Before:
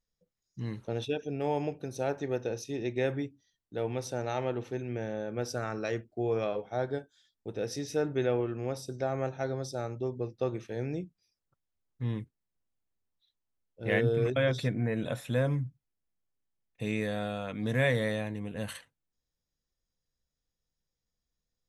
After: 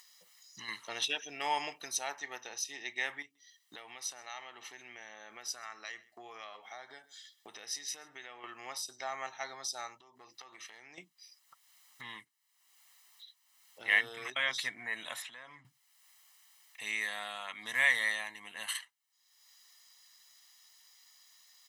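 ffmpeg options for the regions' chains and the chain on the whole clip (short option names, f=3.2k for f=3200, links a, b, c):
-filter_complex "[0:a]asettb=1/sr,asplit=3[a][b][c];[a]atrim=end=0.684[d];[b]atrim=start=0.68:end=1.99,asetpts=PTS-STARTPTS,afade=t=in:d=0.004:c=qsin,afade=t=out:st=1.306:d=0.004:c=qsin,acontrast=54,bandreject=f=790:w=6.8[e];[c]atrim=start=1.986[f];[d][e]acrossfade=d=0.004:c1=hsin:c2=qsin[g];[g][f]acrossfade=d=0.004:c1=qsin:c2=hsin,asettb=1/sr,asplit=3[h][i][j];[h]atrim=end=3.224[k];[i]atrim=start=3.22:end=8.44,asetpts=PTS-STARTPTS,afade=t=in:d=0.004:c=qsin,afade=t=out:st=5.216:d=0.004:c=qsin,equalizer=f=940:t=o:w=0.24:g=-5,acompressor=threshold=-40dB:ratio=2.5:attack=3.2:release=140:knee=1:detection=peak,aecho=1:1:132:0.0631,atrim=end_sample=230202[l];[j]atrim=start=8.436[m];[k][l]acrossfade=d=0.004:c1=hsin:c2=qsin[n];[n][m]acrossfade=d=0.004:c1=qsin:c2=hsin,asettb=1/sr,asplit=3[o][p][q];[o]atrim=end=10.004[r];[p]atrim=start=10:end=10.98,asetpts=PTS-STARTPTS,afade=t=in:d=0.004:c=qsin,afade=t=out:st=0.976:d=0.004:c=qsin,highpass=f=90:p=1,acompressor=threshold=-45dB:ratio=12:attack=3.2:release=140:knee=1:detection=peak,aeval=exprs='clip(val(0),-1,0.00596)':c=same[s];[q]atrim=start=10.976[t];[r][s]acrossfade=d=0.004:c1=hsin:c2=qsin[u];[u][t]acrossfade=d=0.004:c1=qsin:c2=hsin,asettb=1/sr,asplit=3[v][w][x];[v]atrim=end=15.224[y];[w]atrim=start=15.22:end=15.65,asetpts=PTS-STARTPTS,afade=t=in:d=0.004:c=qsin,afade=t=out:st=0.426:d=0.004:c=qsin,acompressor=threshold=-40dB:ratio=4:attack=3.2:release=140:knee=1:detection=peak,highpass=120,lowpass=4.8k[z];[x]atrim=start=15.646[aa];[y][z]acrossfade=d=0.004:c1=hsin:c2=qsin[ab];[ab][aa]acrossfade=d=0.004:c1=qsin:c2=hsin,highpass=1.4k,aecho=1:1:1:0.63,acompressor=mode=upward:threshold=-48dB:ratio=2.5,volume=5.5dB"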